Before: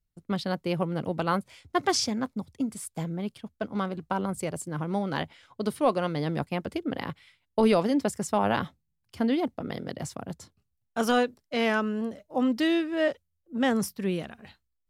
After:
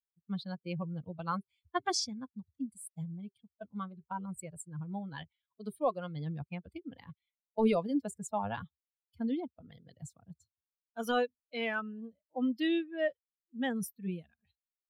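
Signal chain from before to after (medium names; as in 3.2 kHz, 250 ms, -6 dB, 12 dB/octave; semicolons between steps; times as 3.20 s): expander on every frequency bin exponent 2; band-stop 390 Hz, Q 12; trim -3.5 dB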